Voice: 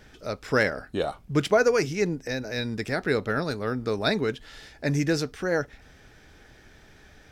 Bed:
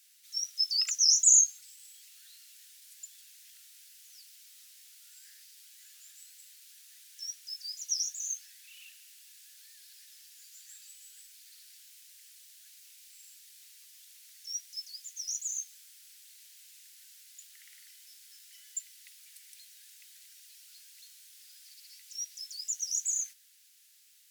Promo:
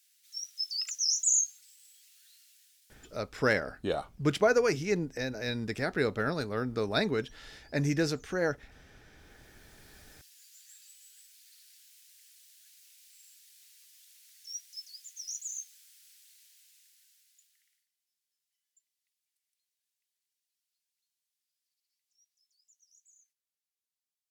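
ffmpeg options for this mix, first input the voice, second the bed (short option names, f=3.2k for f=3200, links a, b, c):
-filter_complex "[0:a]adelay=2900,volume=-4dB[a];[1:a]volume=16.5dB,afade=t=out:st=2.39:d=0.93:silence=0.1,afade=t=in:st=9.1:d=1.09:silence=0.0794328,afade=t=out:st=16.09:d=1.79:silence=0.0354813[b];[a][b]amix=inputs=2:normalize=0"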